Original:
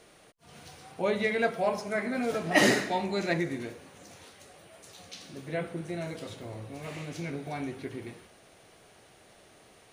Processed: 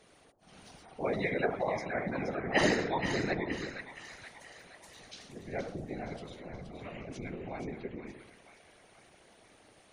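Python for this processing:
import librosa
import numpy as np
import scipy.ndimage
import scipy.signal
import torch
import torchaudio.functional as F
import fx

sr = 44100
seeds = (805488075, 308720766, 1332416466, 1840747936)

y = fx.spec_gate(x, sr, threshold_db=-25, keep='strong')
y = fx.echo_split(y, sr, split_hz=920.0, low_ms=80, high_ms=472, feedback_pct=52, wet_db=-7.5)
y = fx.whisperise(y, sr, seeds[0])
y = y * librosa.db_to_amplitude(-4.5)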